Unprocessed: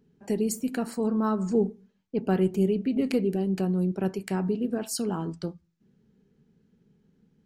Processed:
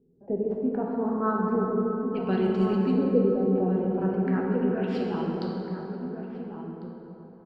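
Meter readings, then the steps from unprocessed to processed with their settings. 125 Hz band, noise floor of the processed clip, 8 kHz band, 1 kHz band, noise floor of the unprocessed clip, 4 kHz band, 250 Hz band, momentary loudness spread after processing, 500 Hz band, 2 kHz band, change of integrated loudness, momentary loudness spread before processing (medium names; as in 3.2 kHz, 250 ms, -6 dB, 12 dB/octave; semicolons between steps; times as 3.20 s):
+0.5 dB, -49 dBFS, under -30 dB, +4.5 dB, -69 dBFS, no reading, +1.0 dB, 14 LU, +2.5 dB, +2.5 dB, +1.0 dB, 7 LU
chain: median filter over 5 samples; band-stop 6.3 kHz, Q 5.2; LFO low-pass saw up 0.34 Hz 440–6400 Hz; echo from a far wall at 240 m, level -7 dB; plate-style reverb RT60 3.7 s, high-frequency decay 0.5×, DRR -2 dB; trim -4.5 dB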